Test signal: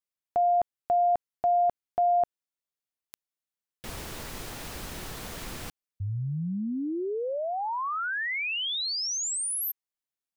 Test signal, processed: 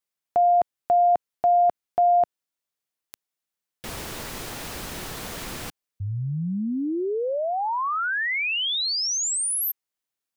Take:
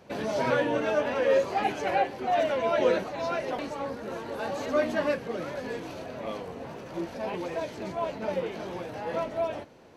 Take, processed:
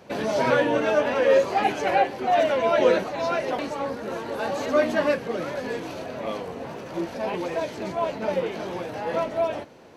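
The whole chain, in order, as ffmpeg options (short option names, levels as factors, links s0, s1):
-af "lowshelf=f=93:g=-6,volume=1.78"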